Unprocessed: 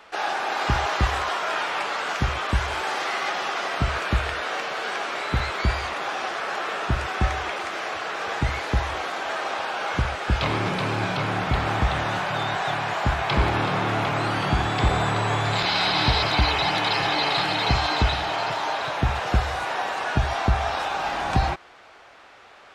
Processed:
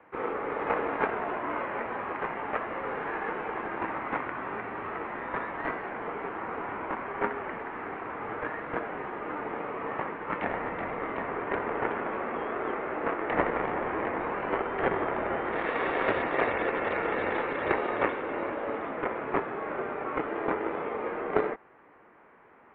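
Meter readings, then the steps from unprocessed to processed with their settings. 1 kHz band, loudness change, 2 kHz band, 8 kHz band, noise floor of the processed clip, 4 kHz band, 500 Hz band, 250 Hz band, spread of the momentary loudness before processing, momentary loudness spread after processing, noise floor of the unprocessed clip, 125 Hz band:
-7.0 dB, -7.5 dB, -7.5 dB, under -40 dB, -57 dBFS, -24.0 dB, -1.0 dB, -4.5 dB, 6 LU, 7 LU, -49 dBFS, -20.5 dB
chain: added harmonics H 3 -12 dB, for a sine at -7.5 dBFS; mistuned SSB -350 Hz 550–2500 Hz; gain +5.5 dB

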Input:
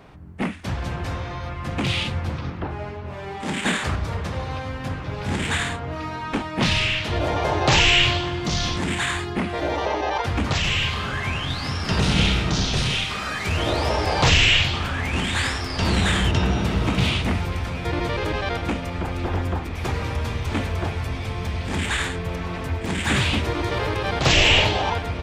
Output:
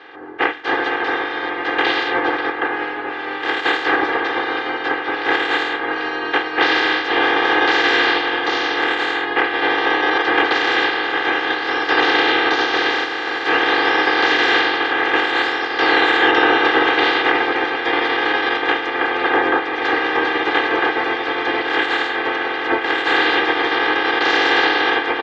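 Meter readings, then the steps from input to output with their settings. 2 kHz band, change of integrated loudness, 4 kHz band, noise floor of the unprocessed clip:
+10.0 dB, +5.5 dB, +2.5 dB, -32 dBFS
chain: spectral limiter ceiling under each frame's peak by 24 dB; comb 2.5 ms, depth 86%; limiter -8.5 dBFS, peak gain reduction 7.5 dB; speaker cabinet 280–3400 Hz, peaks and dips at 310 Hz +8 dB, 500 Hz +5 dB, 890 Hz +4 dB, 1700 Hz +8 dB, 2500 Hz -5 dB; gain +3 dB

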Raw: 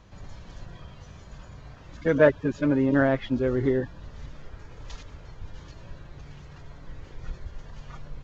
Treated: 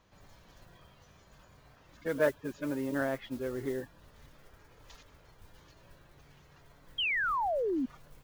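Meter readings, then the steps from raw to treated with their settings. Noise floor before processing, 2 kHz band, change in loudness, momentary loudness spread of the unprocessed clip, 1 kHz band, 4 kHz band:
-48 dBFS, -2.5 dB, -9.0 dB, 21 LU, +1.0 dB, +6.5 dB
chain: modulation noise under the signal 25 dB; low shelf 200 Hz -10 dB; painted sound fall, 6.98–7.86, 240–3300 Hz -22 dBFS; gain -8.5 dB

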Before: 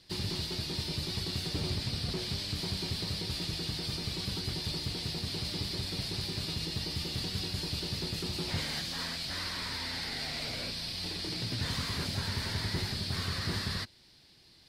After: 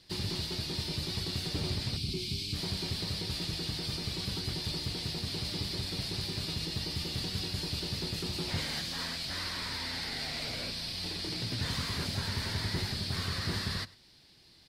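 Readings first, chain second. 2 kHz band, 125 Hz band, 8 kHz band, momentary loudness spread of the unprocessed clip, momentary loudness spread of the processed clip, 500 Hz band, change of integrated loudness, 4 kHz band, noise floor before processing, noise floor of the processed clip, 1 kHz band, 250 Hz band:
0.0 dB, 0.0 dB, 0.0 dB, 2 LU, 2 LU, 0.0 dB, 0.0 dB, 0.0 dB, -60 dBFS, -60 dBFS, 0.0 dB, 0.0 dB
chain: spectral gain 1.97–2.54, 430–2100 Hz -16 dB; on a send: echo 0.103 s -21.5 dB

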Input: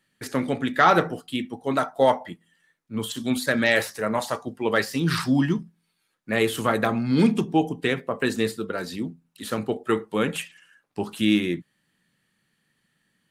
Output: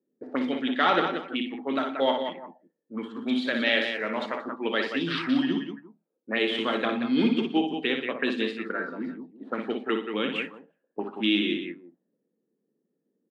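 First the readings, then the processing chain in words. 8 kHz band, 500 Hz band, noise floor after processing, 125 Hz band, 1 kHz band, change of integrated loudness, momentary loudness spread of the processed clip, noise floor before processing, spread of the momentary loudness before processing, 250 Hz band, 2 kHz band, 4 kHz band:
under -20 dB, -4.0 dB, -80 dBFS, -13.5 dB, -5.0 dB, -3.0 dB, 14 LU, -73 dBFS, 12 LU, -2.5 dB, -2.5 dB, +2.0 dB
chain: ladder high-pass 210 Hz, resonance 40%; on a send: tapped delay 59/119/181/345 ms -6/-17/-7.5/-20 dB; on the sum: envelope low-pass 440–3200 Hz up, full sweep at -26.5 dBFS

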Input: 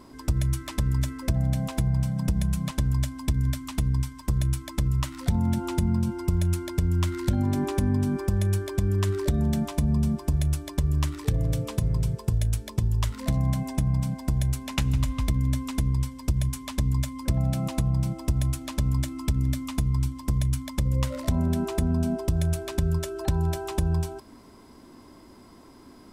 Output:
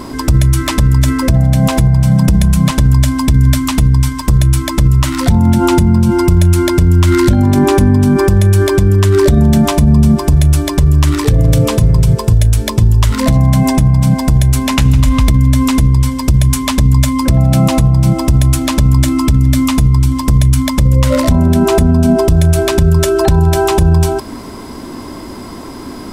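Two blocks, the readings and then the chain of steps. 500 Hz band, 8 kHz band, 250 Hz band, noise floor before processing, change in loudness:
+19.0 dB, +16.5 dB, +17.0 dB, -50 dBFS, +16.0 dB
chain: maximiser +23.5 dB; gain -1 dB

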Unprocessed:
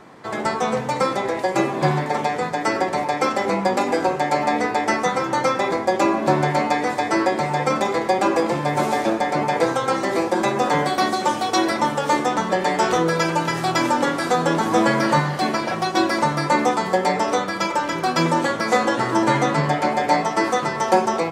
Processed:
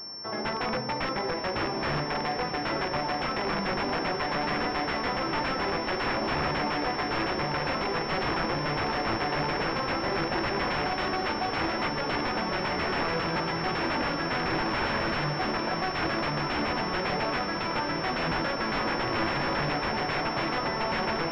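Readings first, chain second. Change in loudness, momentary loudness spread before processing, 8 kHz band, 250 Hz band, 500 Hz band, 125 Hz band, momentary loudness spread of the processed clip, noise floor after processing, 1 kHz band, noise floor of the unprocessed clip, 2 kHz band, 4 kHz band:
-8.0 dB, 3 LU, under -20 dB, -9.5 dB, -10.0 dB, -7.5 dB, 2 LU, -32 dBFS, -9.5 dB, -28 dBFS, -5.0 dB, -3.0 dB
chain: wrapped overs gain 15 dB; diffused feedback echo 0.935 s, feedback 77%, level -10 dB; pulse-width modulation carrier 5400 Hz; gain -6.5 dB

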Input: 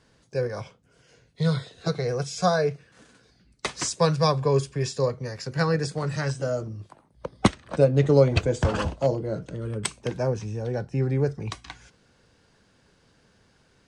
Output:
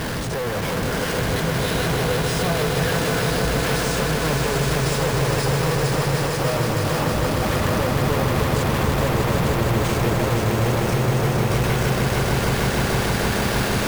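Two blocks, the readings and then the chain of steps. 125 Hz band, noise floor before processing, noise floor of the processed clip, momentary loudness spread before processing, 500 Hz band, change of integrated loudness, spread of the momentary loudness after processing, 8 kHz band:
+6.0 dB, -63 dBFS, -24 dBFS, 14 LU, +3.0 dB, +4.5 dB, 2 LU, +8.5 dB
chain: infinite clipping; high shelf 4000 Hz -10 dB; swelling echo 0.154 s, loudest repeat 5, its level -6 dB; careless resampling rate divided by 3×, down none, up hold; gain +2 dB

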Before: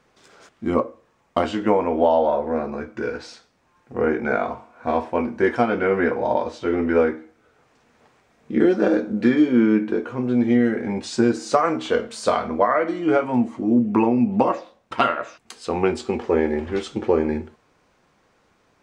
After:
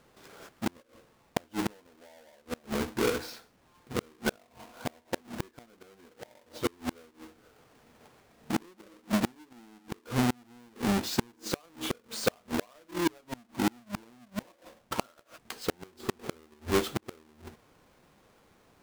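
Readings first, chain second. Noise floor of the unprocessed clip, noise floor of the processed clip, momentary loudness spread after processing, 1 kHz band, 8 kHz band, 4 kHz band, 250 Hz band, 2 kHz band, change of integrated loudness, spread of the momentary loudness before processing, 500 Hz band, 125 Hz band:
-63 dBFS, -65 dBFS, 22 LU, -15.0 dB, +0.5 dB, -2.0 dB, -13.5 dB, -10.5 dB, -12.5 dB, 11 LU, -16.0 dB, -7.0 dB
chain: half-waves squared off; flipped gate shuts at -13 dBFS, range -36 dB; gain -5 dB

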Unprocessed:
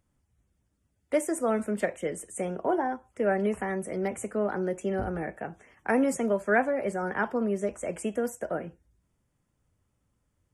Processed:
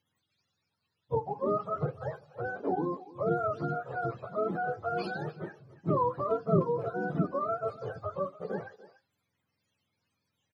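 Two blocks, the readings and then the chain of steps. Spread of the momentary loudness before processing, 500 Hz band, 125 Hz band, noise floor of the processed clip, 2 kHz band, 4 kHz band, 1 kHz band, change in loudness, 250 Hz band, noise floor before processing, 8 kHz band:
9 LU, -3.5 dB, +4.5 dB, -82 dBFS, -7.5 dB, n/a, 0.0 dB, -3.0 dB, -5.5 dB, -76 dBFS, under -30 dB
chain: spectrum mirrored in octaves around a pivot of 520 Hz; speakerphone echo 0.29 s, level -17 dB; gain -1.5 dB

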